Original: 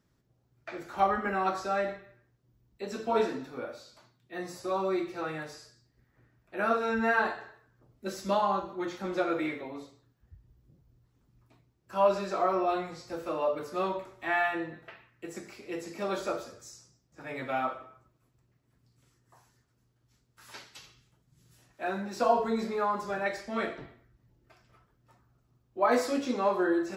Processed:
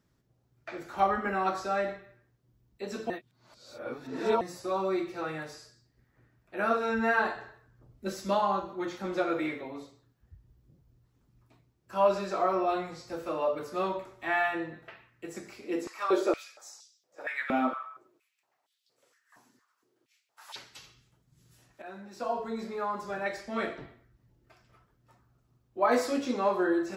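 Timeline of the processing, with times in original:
3.10–4.41 s: reverse
7.35–8.14 s: bass shelf 130 Hz +10 dB
15.64–20.56 s: step-sequenced high-pass 4.3 Hz 250–3500 Hz
21.82–23.68 s: fade in, from -13 dB

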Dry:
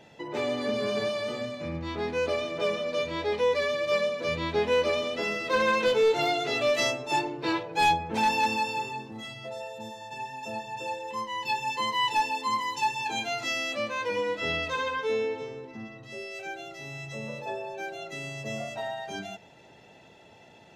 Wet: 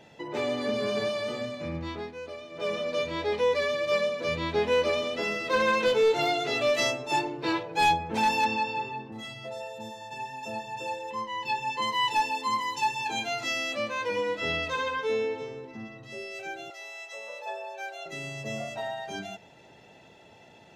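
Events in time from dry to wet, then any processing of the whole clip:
1.84–2.78 s: dip -12 dB, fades 0.29 s
8.44–9.11 s: low-pass 5 kHz -> 2.7 kHz
11.10–11.82 s: treble shelf 6.6 kHz -10.5 dB
16.70–18.06 s: high-pass 530 Hz 24 dB/octave

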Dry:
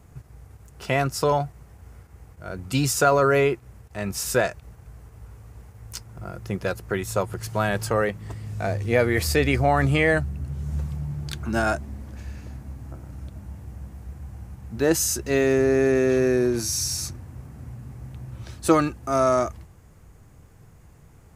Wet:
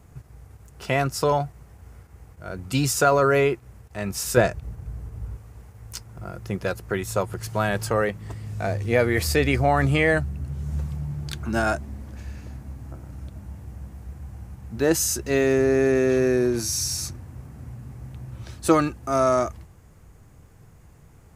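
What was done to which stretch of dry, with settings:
4.37–5.37 s: bass shelf 400 Hz +10 dB

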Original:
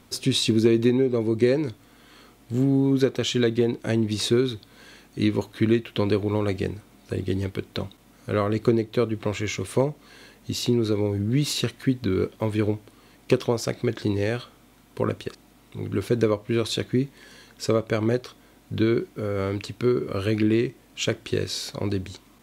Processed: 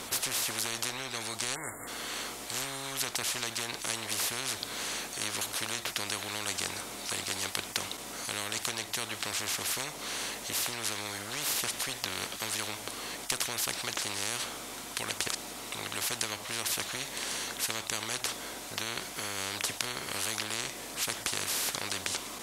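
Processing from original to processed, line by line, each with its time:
1.55–1.87 s: spectral selection erased 2.2–6.9 kHz
whole clip: low-pass 11 kHz 12 dB/octave; tone controls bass -14 dB, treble +7 dB; spectrum-flattening compressor 10:1; trim +2.5 dB

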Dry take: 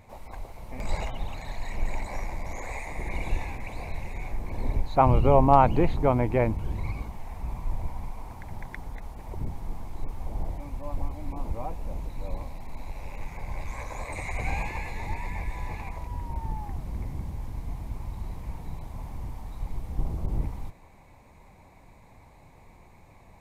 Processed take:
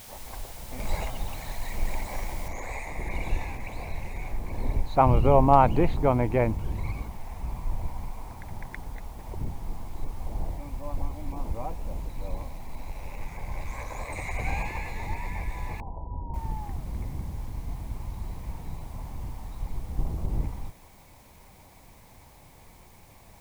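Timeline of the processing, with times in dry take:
2.48 s: noise floor step -47 dB -60 dB
15.80–16.34 s: elliptic low-pass 950 Hz

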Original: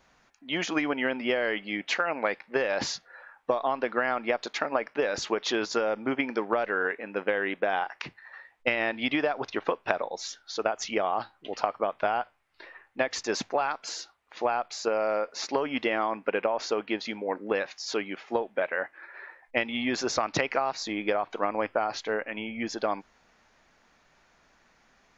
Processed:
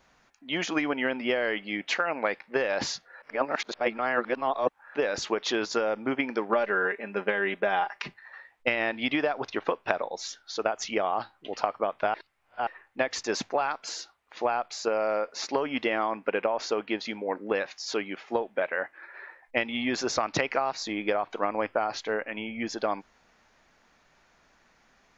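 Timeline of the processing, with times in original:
3.22–4.95 s: reverse
6.49–8.14 s: comb 5 ms
12.14–12.67 s: reverse

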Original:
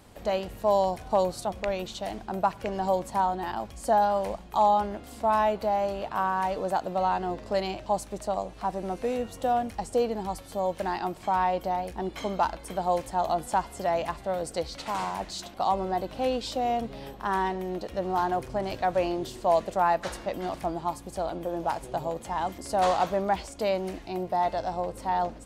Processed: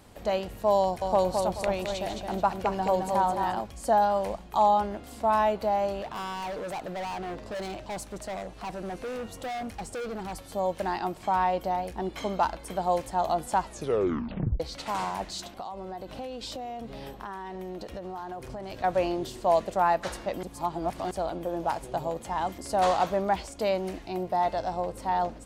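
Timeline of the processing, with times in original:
0.80–3.61 s: feedback delay 216 ms, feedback 33%, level -4.5 dB
6.02–10.37 s: hard clipper -32 dBFS
13.61 s: tape stop 0.99 s
15.53–18.84 s: compression 16:1, threshold -33 dBFS
20.43–21.11 s: reverse

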